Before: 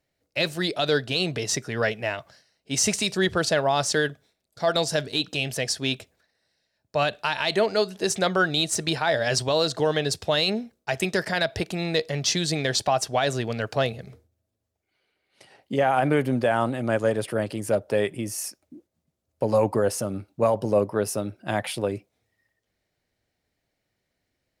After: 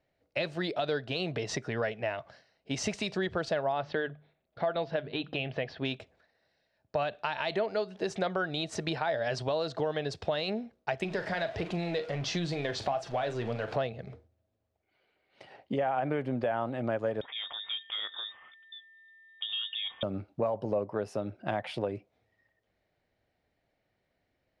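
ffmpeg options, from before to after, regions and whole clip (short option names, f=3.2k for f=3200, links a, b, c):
-filter_complex "[0:a]asettb=1/sr,asplit=3[a][b][c];[a]atrim=end=3.724[d];[b]atrim=start=3.72:end=5.85,asetpts=PTS-STARTPTS,afade=t=in:d=0.004:c=qsin,afade=t=out:st=2.126:d=0.004:c=qsin,lowpass=f=3.5k:w=0.5412,lowpass=f=3.5k:w=1.3066,bandreject=f=50:t=h:w=6,bandreject=f=100:t=h:w=6,bandreject=f=150:t=h:w=6[e];[c]atrim=start=5.846[f];[d][e]acrossfade=d=0.004:c1=hsin:c2=qsin[g];[g][f]acrossfade=d=0.004:c1=qsin:c2=hsin,asettb=1/sr,asplit=3[h][i][j];[h]atrim=end=11.044[k];[i]atrim=start=11.04:end=13.76,asetpts=PTS-STARTPTS,afade=t=in:d=0.004:c=qsin,afade=t=out:st=2.716:d=0.004:c=qsin,aeval=exprs='val(0)+0.5*0.0251*sgn(val(0))':c=same,flanger=delay=5.6:depth=5:regen=64:speed=1.5:shape=sinusoidal,asplit=2[l][m];[m]adelay=41,volume=-12dB[n];[l][n]amix=inputs=2:normalize=0,atrim=end_sample=119952[o];[j]atrim=start=13.756[p];[k][o]acrossfade=d=0.004:c1=hsin:c2=qsin[q];[q][p]acrossfade=d=0.004:c1=qsin:c2=hsin,asettb=1/sr,asplit=3[r][s][t];[r]atrim=end=17.214[u];[s]atrim=start=17.21:end=20.03,asetpts=PTS-STARTPTS,afade=t=in:d=0.004:c=qsin,afade=t=out:st=2.816:d=0.004:c=qsin,acompressor=threshold=-35dB:ratio=2:attack=3.2:release=140:knee=1:detection=peak,aeval=exprs='val(0)+0.00178*sin(2*PI*2000*n/s)':c=same,lowpass=f=3.2k:t=q:w=0.5098,lowpass=f=3.2k:t=q:w=0.6013,lowpass=f=3.2k:t=q:w=0.9,lowpass=f=3.2k:t=q:w=2.563,afreqshift=-3800[v];[t]atrim=start=20.026[w];[u][v]acrossfade=d=0.004:c1=hsin:c2=qsin[x];[x][w]acrossfade=d=0.004:c1=qsin:c2=hsin,lowpass=3.4k,equalizer=f=680:w=1.5:g=4.5,acompressor=threshold=-31dB:ratio=3"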